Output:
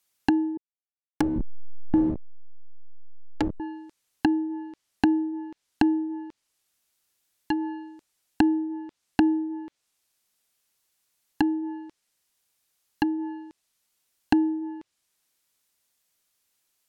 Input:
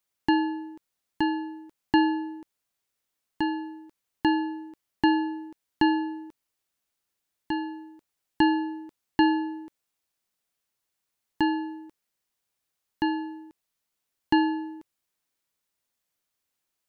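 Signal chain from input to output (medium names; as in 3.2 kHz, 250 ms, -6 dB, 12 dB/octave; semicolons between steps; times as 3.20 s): 0.57–3.60 s: send-on-delta sampling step -21 dBFS; treble shelf 2.7 kHz +7 dB; low-pass that closes with the level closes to 330 Hz, closed at -23.5 dBFS; trim +3.5 dB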